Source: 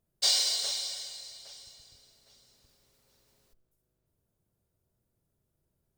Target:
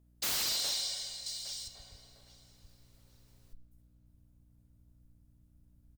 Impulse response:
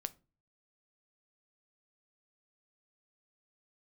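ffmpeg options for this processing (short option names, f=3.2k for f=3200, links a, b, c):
-filter_complex "[0:a]asubboost=boost=9:cutoff=94,aeval=exprs='val(0)+0.000631*(sin(2*PI*60*n/s)+sin(2*PI*2*60*n/s)/2+sin(2*PI*3*60*n/s)/3+sin(2*PI*4*60*n/s)/4+sin(2*PI*5*60*n/s)/5)':c=same,asettb=1/sr,asplit=3[a][b][c];[a]atrim=end=1.264[d];[b]atrim=start=1.26:end=1.68,asetpts=PTS-STARTPTS,afade=t=in:d=0.004:c=qsin,afade=t=out:st=0.416:d=0.004:c=qsin,highshelf=f=3.2k:g=10.5[e];[c]atrim=start=1.676[f];[d][e]acrossfade=d=0.004:c1=hsin:c2=qsin[g];[g][f]acrossfade=d=0.004:c1=qsin:c2=hsin,asplit=2[h][i];[i]adelay=1516,volume=-19dB,highshelf=f=4k:g=-34.1[j];[h][j]amix=inputs=2:normalize=0,aeval=exprs='0.0422*(abs(mod(val(0)/0.0422+3,4)-2)-1)':c=same"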